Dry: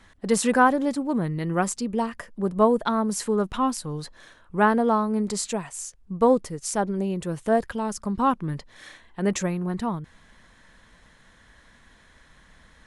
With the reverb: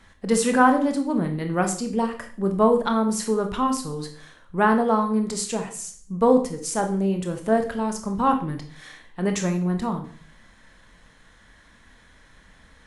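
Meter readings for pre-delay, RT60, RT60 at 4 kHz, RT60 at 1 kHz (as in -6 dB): 19 ms, 0.45 s, 0.45 s, 0.45 s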